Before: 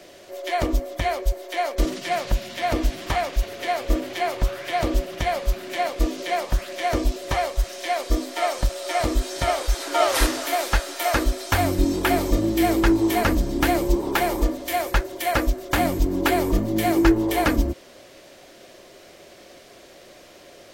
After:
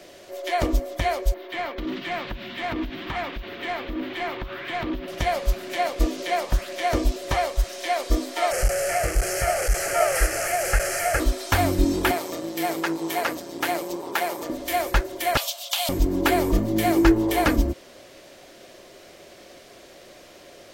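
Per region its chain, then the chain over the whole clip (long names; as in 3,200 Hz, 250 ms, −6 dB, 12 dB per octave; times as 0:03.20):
0:01.34–0:05.08: drawn EQ curve 290 Hz 0 dB, 600 Hz −15 dB, 910 Hz −8 dB, 3,600 Hz −3 dB, 9,400 Hz −30 dB, 15,000 Hz +3 dB + downward compressor 12 to 1, threshold −24 dBFS + mid-hump overdrive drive 19 dB, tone 1,400 Hz, clips at −17 dBFS
0:08.51–0:11.20: linear delta modulator 64 kbit/s, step −17 dBFS + phaser with its sweep stopped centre 1,000 Hz, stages 6
0:12.11–0:14.50: high-pass filter 460 Hz + amplitude modulation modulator 170 Hz, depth 35%
0:15.37–0:15.89: Butterworth high-pass 620 Hz 48 dB per octave + high shelf with overshoot 2,400 Hz +10 dB, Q 3 + downward compressor 5 to 1, threshold −21 dBFS
whole clip: no processing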